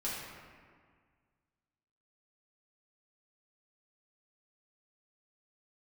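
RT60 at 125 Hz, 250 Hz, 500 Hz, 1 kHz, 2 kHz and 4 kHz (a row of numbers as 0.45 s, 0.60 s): 2.2 s, 2.0 s, 1.8 s, 1.8 s, 1.7 s, 1.1 s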